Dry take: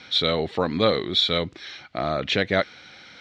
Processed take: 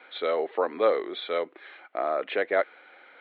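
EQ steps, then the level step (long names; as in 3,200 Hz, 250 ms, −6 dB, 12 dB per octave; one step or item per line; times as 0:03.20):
Gaussian smoothing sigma 3.9 samples
high-pass filter 380 Hz 24 dB per octave
0.0 dB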